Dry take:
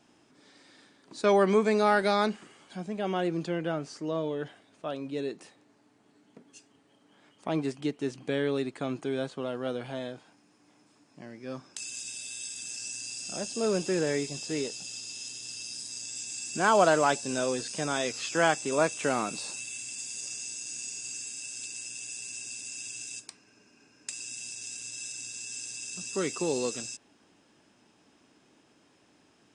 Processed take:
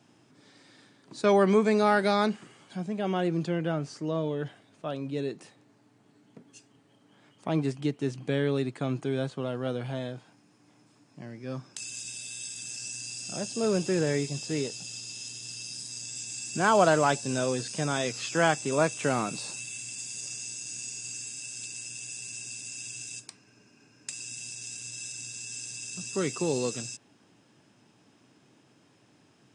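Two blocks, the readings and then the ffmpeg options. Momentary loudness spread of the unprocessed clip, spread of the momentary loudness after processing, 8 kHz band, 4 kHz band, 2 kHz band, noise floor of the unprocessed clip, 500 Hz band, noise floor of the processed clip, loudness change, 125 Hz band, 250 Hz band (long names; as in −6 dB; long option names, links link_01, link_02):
14 LU, 14 LU, 0.0 dB, 0.0 dB, 0.0 dB, −64 dBFS, +0.5 dB, −63 dBFS, +1.0 dB, +6.5 dB, +2.5 dB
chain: -af "highpass=93,equalizer=frequency=120:width=1.4:gain=11"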